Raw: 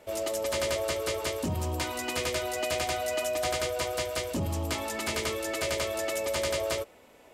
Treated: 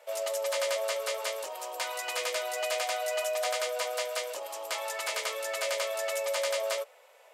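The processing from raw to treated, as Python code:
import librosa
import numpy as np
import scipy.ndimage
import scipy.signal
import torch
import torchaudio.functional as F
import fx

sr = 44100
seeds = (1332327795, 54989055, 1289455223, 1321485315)

y = scipy.signal.sosfilt(scipy.signal.ellip(4, 1.0, 70, 510.0, 'highpass', fs=sr, output='sos'), x)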